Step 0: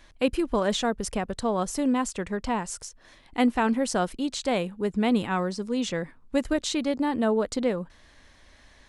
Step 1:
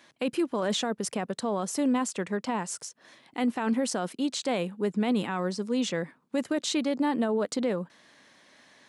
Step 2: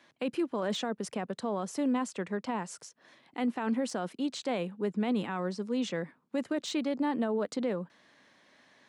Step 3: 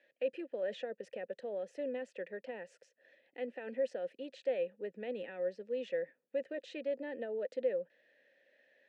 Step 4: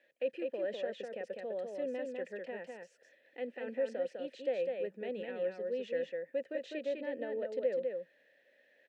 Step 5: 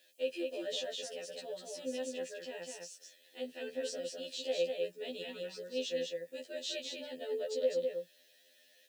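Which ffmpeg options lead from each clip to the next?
ffmpeg -i in.wav -af "highpass=frequency=150:width=0.5412,highpass=frequency=150:width=1.3066,alimiter=limit=-19dB:level=0:latency=1:release=12" out.wav
ffmpeg -i in.wav -filter_complex "[0:a]highshelf=frequency=6200:gain=-10,acrossover=split=170|2900[link_01][link_02][link_03];[link_03]volume=28dB,asoftclip=hard,volume=-28dB[link_04];[link_01][link_02][link_04]amix=inputs=3:normalize=0,volume=-3.5dB" out.wav
ffmpeg -i in.wav -filter_complex "[0:a]asplit=3[link_01][link_02][link_03];[link_01]bandpass=frequency=530:width_type=q:width=8,volume=0dB[link_04];[link_02]bandpass=frequency=1840:width_type=q:width=8,volume=-6dB[link_05];[link_03]bandpass=frequency=2480:width_type=q:width=8,volume=-9dB[link_06];[link_04][link_05][link_06]amix=inputs=3:normalize=0,volume=3.5dB" out.wav
ffmpeg -i in.wav -af "aecho=1:1:202:0.631" out.wav
ffmpeg -i in.wav -af "aexciter=amount=5.2:drive=9.5:freq=3100,afftfilt=real='re*2*eq(mod(b,4),0)':imag='im*2*eq(mod(b,4),0)':win_size=2048:overlap=0.75" out.wav

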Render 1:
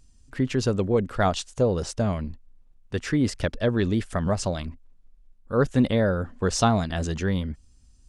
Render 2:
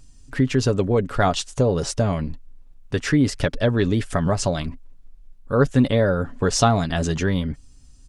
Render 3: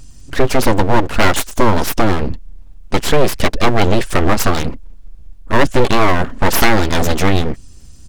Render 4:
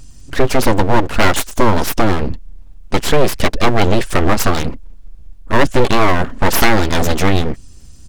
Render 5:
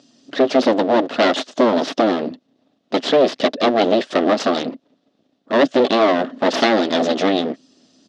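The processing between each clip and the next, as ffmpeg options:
ffmpeg -i in.wav -filter_complex "[0:a]aecho=1:1:7.1:0.38,asplit=2[link_01][link_02];[link_02]acompressor=threshold=-28dB:ratio=6,volume=2dB[link_03];[link_01][link_03]amix=inputs=2:normalize=0" out.wav
ffmpeg -i in.wav -af "aeval=exprs='abs(val(0))':channel_layout=same,apsyclip=12.5dB,volume=-1.5dB" out.wav
ffmpeg -i in.wav -af anull out.wav
ffmpeg -i in.wav -af "highpass=frequency=230:width=0.5412,highpass=frequency=230:width=1.3066,equalizer=frequency=260:width_type=q:width=4:gain=6,equalizer=frequency=630:width_type=q:width=4:gain=8,equalizer=frequency=950:width_type=q:width=4:gain=-6,equalizer=frequency=1500:width_type=q:width=4:gain=-4,equalizer=frequency=2300:width_type=q:width=4:gain=-6,equalizer=frequency=3600:width_type=q:width=4:gain=4,lowpass=frequency=5200:width=0.5412,lowpass=frequency=5200:width=1.3066,volume=-2dB" out.wav

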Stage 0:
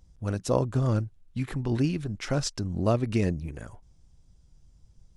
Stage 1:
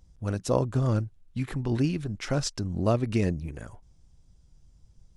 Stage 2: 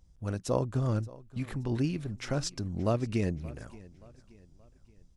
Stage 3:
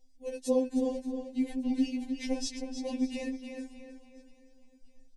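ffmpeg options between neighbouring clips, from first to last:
ffmpeg -i in.wav -af anull out.wav
ffmpeg -i in.wav -af "aecho=1:1:576|1152|1728:0.0944|0.0415|0.0183,volume=-4dB" out.wav
ffmpeg -i in.wav -filter_complex "[0:a]asuperstop=centerf=1300:order=4:qfactor=1.2,asplit=2[link_01][link_02];[link_02]adelay=312,lowpass=frequency=4700:poles=1,volume=-6.5dB,asplit=2[link_03][link_04];[link_04]adelay=312,lowpass=frequency=4700:poles=1,volume=0.38,asplit=2[link_05][link_06];[link_06]adelay=312,lowpass=frequency=4700:poles=1,volume=0.38,asplit=2[link_07][link_08];[link_08]adelay=312,lowpass=frequency=4700:poles=1,volume=0.38[link_09];[link_01][link_03][link_05][link_07][link_09]amix=inputs=5:normalize=0,afftfilt=real='re*3.46*eq(mod(b,12),0)':imag='im*3.46*eq(mod(b,12),0)':win_size=2048:overlap=0.75,volume=2dB" out.wav

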